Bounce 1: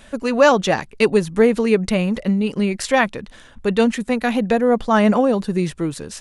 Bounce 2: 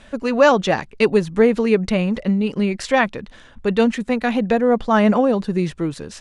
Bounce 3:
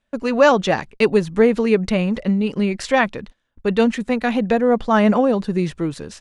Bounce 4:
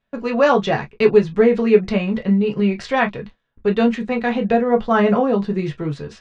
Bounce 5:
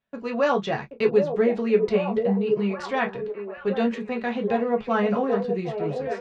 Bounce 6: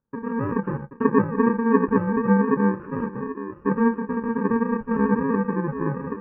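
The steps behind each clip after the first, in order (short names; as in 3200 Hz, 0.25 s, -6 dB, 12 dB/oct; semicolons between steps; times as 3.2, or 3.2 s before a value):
air absorption 59 m
gate -36 dBFS, range -28 dB
air absorption 110 m; reverb, pre-delay 3 ms, DRR 2 dB; gain -1.5 dB
HPF 88 Hz 6 dB/oct; on a send: delay with a stepping band-pass 0.779 s, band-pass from 450 Hz, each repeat 0.7 oct, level -3 dB; on the sum: gain -7 dB
FFT order left unsorted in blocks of 64 samples; elliptic low-pass 1600 Hz, stop band 60 dB; gain +7.5 dB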